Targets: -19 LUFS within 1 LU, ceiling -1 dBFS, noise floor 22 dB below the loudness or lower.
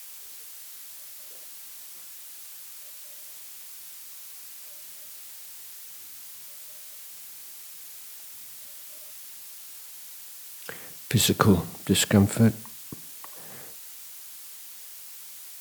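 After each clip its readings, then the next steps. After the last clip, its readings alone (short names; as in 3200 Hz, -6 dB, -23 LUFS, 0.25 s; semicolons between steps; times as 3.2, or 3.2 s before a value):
noise floor -43 dBFS; noise floor target -53 dBFS; loudness -31.0 LUFS; peak -3.0 dBFS; loudness target -19.0 LUFS
-> noise print and reduce 10 dB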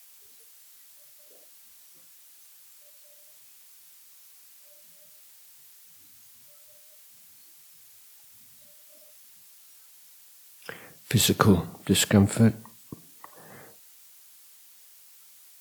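noise floor -53 dBFS; loudness -22.5 LUFS; peak -3.0 dBFS; loudness target -19.0 LUFS
-> gain +3.5 dB; limiter -1 dBFS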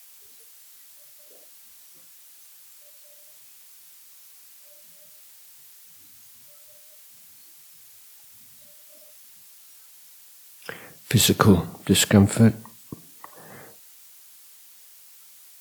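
loudness -19.0 LUFS; peak -1.0 dBFS; noise floor -50 dBFS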